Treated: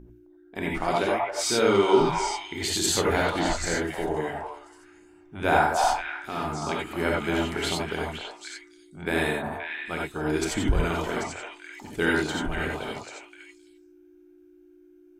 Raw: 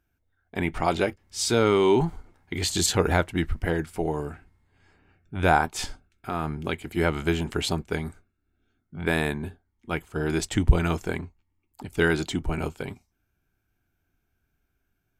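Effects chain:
hum with harmonics 60 Hz, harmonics 6, −41 dBFS −4 dB per octave
parametric band 100 Hz −5.5 dB 1.7 octaves
mains-hum notches 60/120/180/240 Hz
on a send: echo through a band-pass that steps 263 ms, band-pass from 870 Hz, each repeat 1.4 octaves, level −0.5 dB
on the sum: reverb whose tail is shaped and stops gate 110 ms rising, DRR −2 dB
level −3.5 dB

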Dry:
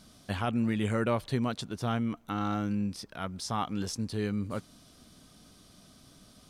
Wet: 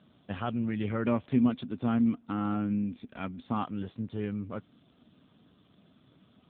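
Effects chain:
0:01.03–0:03.62: hollow resonant body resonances 250/2,400 Hz, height 11 dB → 15 dB, ringing for 75 ms
level −1.5 dB
AMR narrowband 7.4 kbit/s 8,000 Hz

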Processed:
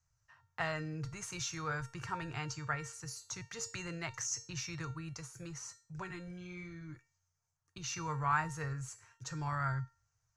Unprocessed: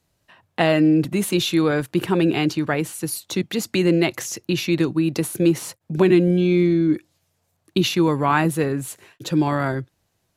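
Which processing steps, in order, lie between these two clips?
drawn EQ curve 130 Hz 0 dB, 200 Hz −25 dB, 380 Hz −25 dB, 1,300 Hz −2 dB, 3,600 Hz −18 dB, 6,200 Hz +2 dB, 12,000 Hz −28 dB
0:05.13–0:07.89: flanger 1.9 Hz, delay 3.4 ms, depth 2.9 ms, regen −51%
tuned comb filter 460 Hz, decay 0.39 s, mix 80%
level +7 dB

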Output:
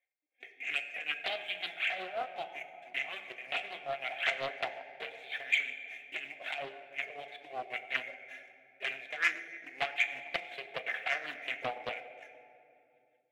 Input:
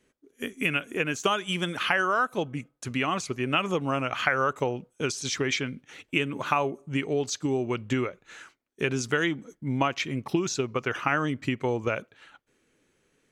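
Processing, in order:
variable-slope delta modulation 64 kbit/s
wrap-around overflow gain 14 dB
linear-prediction vocoder at 8 kHz pitch kept
spectral tilt +4 dB per octave
flanger swept by the level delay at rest 3.8 ms, full sweep at −19.5 dBFS
pair of resonant band-passes 1,200 Hz, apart 1.5 octaves
leveller curve on the samples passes 1
amplitude tremolo 5.4 Hz, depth 77%
convolution reverb RT60 3.0 s, pre-delay 8 ms, DRR 4.5 dB
automatic gain control gain up to 5.5 dB
notch comb filter 990 Hz
highs frequency-modulated by the lows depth 0.34 ms

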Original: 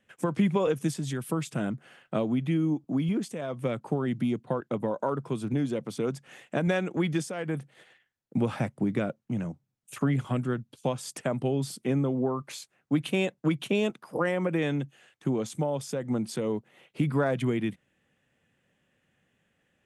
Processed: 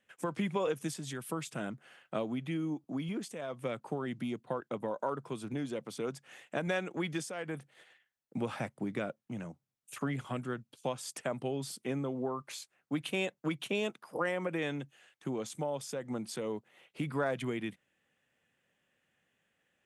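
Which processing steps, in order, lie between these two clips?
low-shelf EQ 340 Hz −9.5 dB
level −3 dB

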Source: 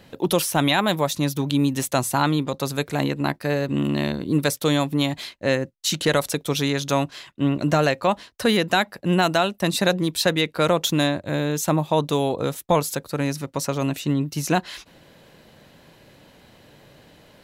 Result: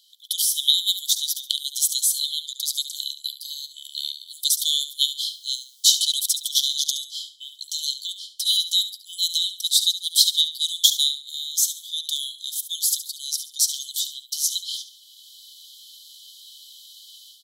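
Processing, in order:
automatic gain control gain up to 13 dB
0:05.25–0:06.74: background noise pink −51 dBFS
linear-phase brick-wall high-pass 3,000 Hz
on a send: repeating echo 70 ms, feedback 30%, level −12 dB
on the sum: level +1.5 dB

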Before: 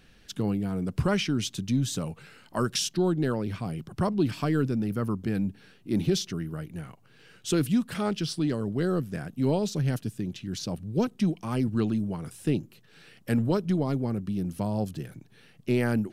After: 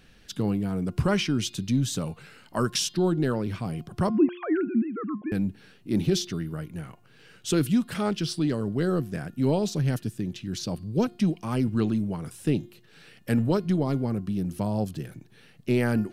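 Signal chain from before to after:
0:04.10–0:05.32: three sine waves on the formant tracks
hum removal 354.2 Hz, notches 14
level +1.5 dB

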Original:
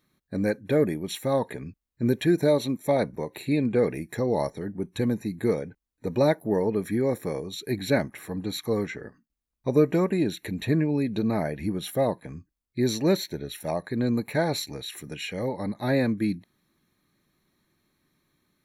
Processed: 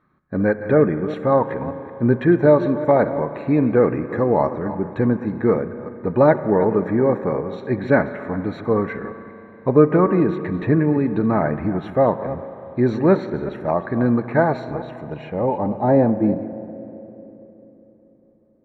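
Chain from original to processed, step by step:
delay that plays each chunk backwards 190 ms, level −13 dB
spring reverb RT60 3.9 s, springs 33/40 ms, chirp 65 ms, DRR 12 dB
low-pass filter sweep 1,300 Hz → 530 Hz, 0:14.14–0:17.74
level +6 dB

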